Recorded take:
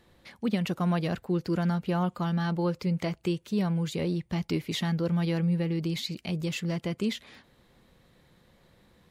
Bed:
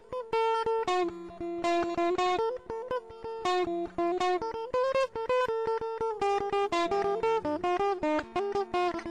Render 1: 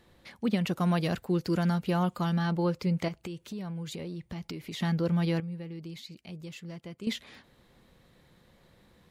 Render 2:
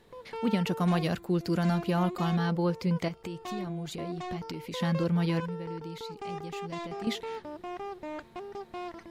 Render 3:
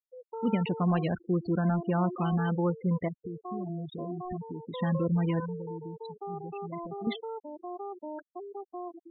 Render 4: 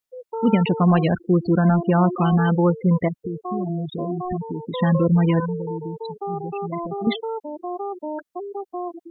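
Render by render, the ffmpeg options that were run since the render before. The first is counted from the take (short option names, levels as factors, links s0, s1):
-filter_complex "[0:a]asettb=1/sr,asplit=3[s0][s1][s2];[s0]atrim=end=0.774[s3];[s1]atrim=start=0.77:end=2.39,asetpts=PTS-STARTPTS,afade=t=in:d=0.004:c=qsin,afade=t=out:st=1.616:d=0.004:c=qsin,highshelf=f=4100:g=6.5[s4];[s2]atrim=start=2.386[s5];[s3][s4]acrossfade=d=0.004:c1=hsin:c2=qsin[s6];[s6][s5]acrossfade=d=0.004:c1=qsin:c2=hsin,asettb=1/sr,asplit=3[s7][s8][s9];[s7]atrim=end=3.084[s10];[s8]atrim=start=3.08:end=4.8,asetpts=PTS-STARTPTS,afade=t=in:d=0.004:c=qsin,afade=t=out:st=1.716:d=0.004:c=qsin,acompressor=threshold=0.0178:ratio=6:attack=3.2:release=140:knee=1:detection=peak[s11];[s9]atrim=start=4.796[s12];[s10][s11]acrossfade=d=0.004:c1=hsin:c2=qsin[s13];[s13][s12]acrossfade=d=0.004:c1=qsin:c2=hsin,asplit=3[s14][s15][s16];[s14]atrim=end=5.402[s17];[s15]atrim=start=5.398:end=7.072,asetpts=PTS-STARTPTS,volume=0.266[s18];[s16]atrim=start=7.068[s19];[s17][s18]acrossfade=d=0.004:c1=hsin:c2=hsin[s20];[s20][s19]acrossfade=d=0.004:c1=hsin:c2=hsin"
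-filter_complex "[1:a]volume=0.299[s0];[0:a][s0]amix=inputs=2:normalize=0"
-af "lowpass=4700,afftfilt=real='re*gte(hypot(re,im),0.0355)':imag='im*gte(hypot(re,im),0.0355)':win_size=1024:overlap=0.75"
-af "volume=3.16"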